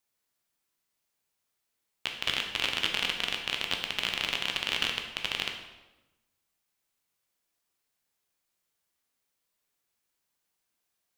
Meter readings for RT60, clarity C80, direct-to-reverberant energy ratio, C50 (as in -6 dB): 1.0 s, 8.0 dB, 2.0 dB, 5.5 dB